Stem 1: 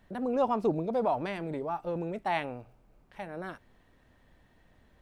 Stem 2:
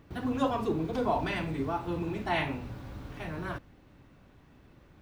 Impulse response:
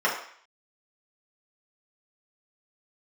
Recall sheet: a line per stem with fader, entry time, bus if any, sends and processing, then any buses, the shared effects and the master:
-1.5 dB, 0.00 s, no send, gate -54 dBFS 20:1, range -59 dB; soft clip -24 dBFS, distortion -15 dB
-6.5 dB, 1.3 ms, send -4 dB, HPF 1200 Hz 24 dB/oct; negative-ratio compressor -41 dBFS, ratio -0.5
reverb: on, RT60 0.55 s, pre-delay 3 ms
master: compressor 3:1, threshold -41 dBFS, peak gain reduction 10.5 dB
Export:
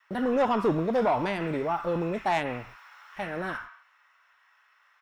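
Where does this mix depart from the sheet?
stem 1 -1.5 dB -> +6.0 dB; master: missing compressor 3:1, threshold -41 dBFS, peak gain reduction 10.5 dB

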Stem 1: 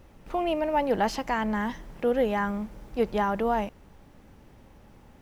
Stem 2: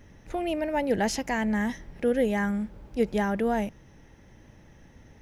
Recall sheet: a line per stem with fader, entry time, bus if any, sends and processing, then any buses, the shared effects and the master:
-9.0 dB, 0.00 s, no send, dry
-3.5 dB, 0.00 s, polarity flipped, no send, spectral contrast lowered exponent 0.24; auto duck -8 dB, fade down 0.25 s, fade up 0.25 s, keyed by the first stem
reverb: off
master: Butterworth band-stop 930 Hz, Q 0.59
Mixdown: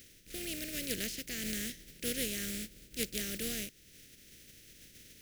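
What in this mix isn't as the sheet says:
stem 1 -9.0 dB -> -16.5 dB; stem 2: polarity flipped

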